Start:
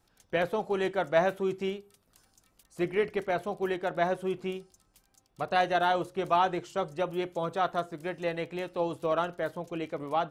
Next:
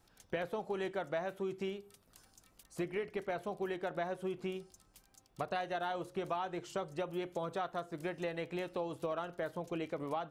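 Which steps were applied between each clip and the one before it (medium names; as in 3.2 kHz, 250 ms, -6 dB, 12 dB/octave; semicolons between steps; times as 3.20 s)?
compression 6:1, threshold -36 dBFS, peak gain reduction 16 dB; trim +1 dB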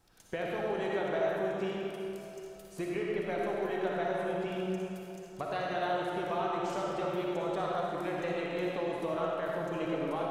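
algorithmic reverb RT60 3.2 s, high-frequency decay 0.65×, pre-delay 20 ms, DRR -4 dB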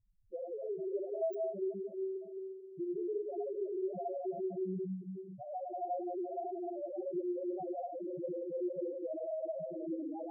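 bit-reversed sample order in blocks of 16 samples; two-band feedback delay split 920 Hz, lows 178 ms, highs 101 ms, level -8.5 dB; loudest bins only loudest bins 2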